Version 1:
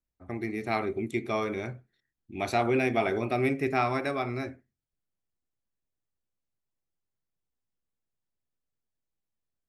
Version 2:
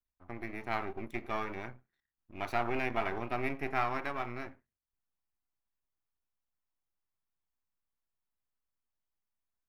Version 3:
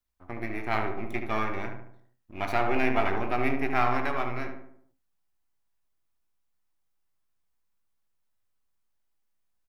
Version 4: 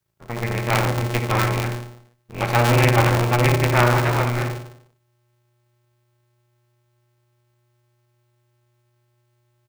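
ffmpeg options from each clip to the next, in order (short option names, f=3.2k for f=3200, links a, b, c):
-af "aeval=exprs='if(lt(val(0),0),0.251*val(0),val(0))':c=same,equalizer=f=125:t=o:w=1:g=-6,equalizer=f=250:t=o:w=1:g=-3,equalizer=f=500:t=o:w=1:g=-6,equalizer=f=1k:t=o:w=1:g=5,equalizer=f=4k:t=o:w=1:g=-4,equalizer=f=8k:t=o:w=1:g=-11,volume=-2dB"
-filter_complex "[0:a]asplit=2[a][b];[b]adelay=19,volume=-13dB[c];[a][c]amix=inputs=2:normalize=0,asplit=2[d][e];[e]adelay=73,lowpass=f=1.9k:p=1,volume=-5dB,asplit=2[f][g];[g]adelay=73,lowpass=f=1.9k:p=1,volume=0.51,asplit=2[h][i];[i]adelay=73,lowpass=f=1.9k:p=1,volume=0.51,asplit=2[j][k];[k]adelay=73,lowpass=f=1.9k:p=1,volume=0.51,asplit=2[l][m];[m]adelay=73,lowpass=f=1.9k:p=1,volume=0.51,asplit=2[n][o];[o]adelay=73,lowpass=f=1.9k:p=1,volume=0.51[p];[f][h][j][l][n][p]amix=inputs=6:normalize=0[q];[d][q]amix=inputs=2:normalize=0,volume=5.5dB"
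-af "aeval=exprs='val(0)*sgn(sin(2*PI*120*n/s))':c=same,volume=7dB"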